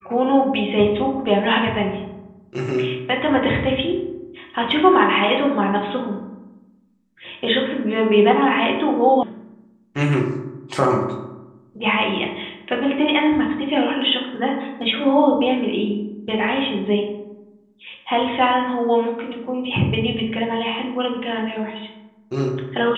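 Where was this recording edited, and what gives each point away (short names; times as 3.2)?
9.23 sound cut off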